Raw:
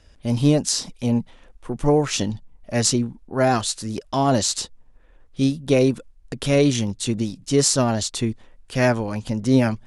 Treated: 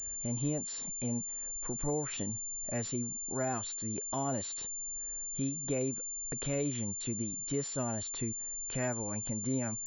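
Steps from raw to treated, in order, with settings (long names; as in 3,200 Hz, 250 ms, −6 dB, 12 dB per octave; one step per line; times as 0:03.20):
downward compressor 2 to 1, threshold −39 dBFS, peak gain reduction 15 dB
0:01.19–0:02.17: bit-depth reduction 12 bits, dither triangular
switching amplifier with a slow clock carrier 7,200 Hz
level −3 dB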